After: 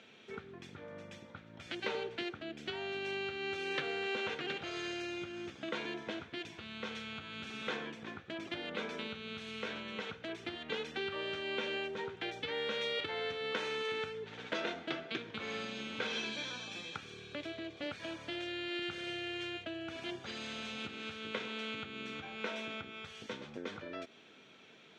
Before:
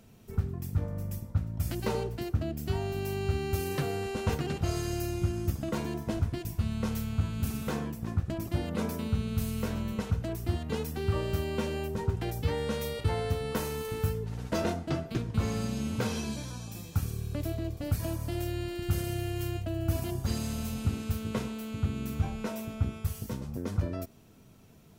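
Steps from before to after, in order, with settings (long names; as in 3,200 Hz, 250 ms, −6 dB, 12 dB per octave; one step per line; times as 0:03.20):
downward compressor 4 to 1, threshold −35 dBFS, peak gain reduction 11 dB
loudspeaker in its box 430–5,300 Hz, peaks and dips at 680 Hz −5 dB, 1,000 Hz −5 dB, 1,600 Hz +5 dB, 2,300 Hz +7 dB, 3,400 Hz +9 dB, 5,000 Hz −7 dB
level +4.5 dB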